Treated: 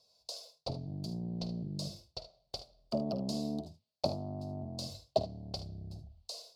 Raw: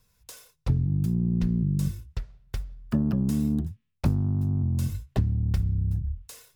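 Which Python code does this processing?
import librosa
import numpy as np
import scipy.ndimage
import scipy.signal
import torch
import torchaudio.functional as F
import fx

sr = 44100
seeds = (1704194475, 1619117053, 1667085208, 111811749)

y = fx.double_bandpass(x, sr, hz=1700.0, octaves=2.8)
y = fx.room_early_taps(y, sr, ms=(50, 75), db=(-13.5, -14.0))
y = y * librosa.db_to_amplitude(13.5)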